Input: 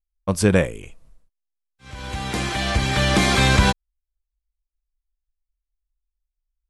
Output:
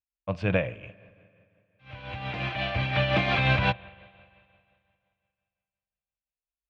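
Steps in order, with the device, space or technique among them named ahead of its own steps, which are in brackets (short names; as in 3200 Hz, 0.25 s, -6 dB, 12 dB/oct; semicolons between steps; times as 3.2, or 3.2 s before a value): combo amplifier with spring reverb and tremolo (spring tank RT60 2.4 s, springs 44/57 ms, chirp 70 ms, DRR 19.5 dB; tremolo 5.7 Hz, depth 44%; speaker cabinet 87–3500 Hz, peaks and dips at 120 Hz +9 dB, 220 Hz -6 dB, 390 Hz -8 dB, 630 Hz +8 dB, 2600 Hz +9 dB); gain -6 dB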